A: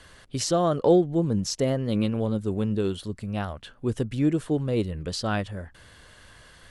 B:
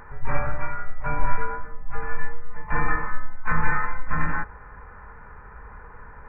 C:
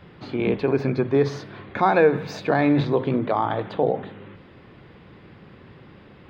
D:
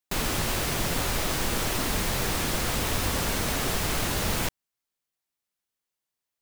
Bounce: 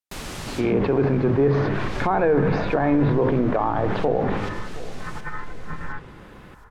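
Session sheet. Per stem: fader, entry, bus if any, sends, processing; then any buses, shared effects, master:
muted
−9.0 dB, 1.55 s, no send, no echo send, compressor whose output falls as the input rises −19 dBFS
+2.0 dB, 0.25 s, no send, echo send −20 dB, level that may fall only so fast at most 41 dB per second
−6.0 dB, 0.00 s, no send, echo send −9 dB, no processing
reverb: not used
echo: repeating echo 718 ms, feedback 33%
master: treble cut that deepens with the level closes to 1,600 Hz, closed at −16 dBFS; brickwall limiter −11 dBFS, peak gain reduction 6 dB

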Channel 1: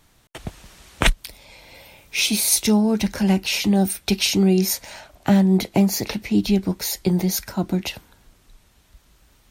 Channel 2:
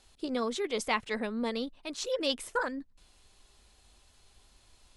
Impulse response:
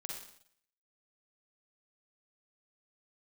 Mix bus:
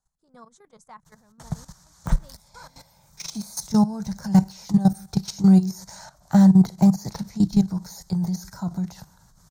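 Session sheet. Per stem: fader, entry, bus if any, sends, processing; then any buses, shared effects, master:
+1.0 dB, 1.05 s, send −15.5 dB, de-essing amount 70%
−11.0 dB, 0.00 s, no send, parametric band 4,600 Hz −10 dB 0.92 octaves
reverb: on, RT60 0.65 s, pre-delay 40 ms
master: high-shelf EQ 9,000 Hz +4 dB; output level in coarse steps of 14 dB; drawn EQ curve 100 Hz 0 dB, 160 Hz +10 dB, 260 Hz −8 dB, 390 Hz −11 dB, 930 Hz +3 dB, 1,600 Hz −2 dB, 2,700 Hz −20 dB, 4,200 Hz −1 dB, 6,500 Hz +6 dB, 10,000 Hz −4 dB

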